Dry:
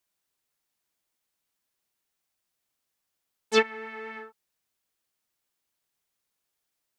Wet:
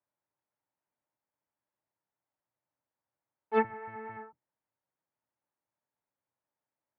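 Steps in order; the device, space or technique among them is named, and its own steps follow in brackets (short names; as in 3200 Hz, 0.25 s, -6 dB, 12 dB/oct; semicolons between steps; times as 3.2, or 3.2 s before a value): sub-octave bass pedal (octaver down 1 oct, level 0 dB; speaker cabinet 84–2000 Hz, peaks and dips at 120 Hz +4 dB, 290 Hz +5 dB, 580 Hz +8 dB, 900 Hz +9 dB); gain -7 dB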